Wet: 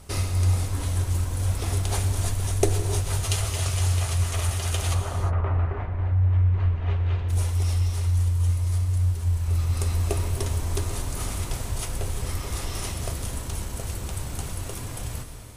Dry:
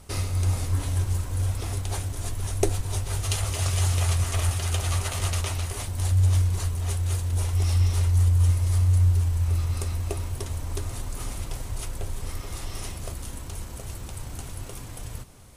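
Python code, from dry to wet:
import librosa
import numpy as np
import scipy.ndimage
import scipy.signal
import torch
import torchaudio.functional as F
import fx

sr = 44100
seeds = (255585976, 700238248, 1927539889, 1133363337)

y = fx.lowpass(x, sr, hz=fx.line((4.93, 1300.0), (7.28, 3200.0)), slope=24, at=(4.93, 7.28), fade=0.02)
y = fx.rider(y, sr, range_db=4, speed_s=0.5)
y = fx.rev_gated(y, sr, seeds[0], gate_ms=380, shape='flat', drr_db=6.5)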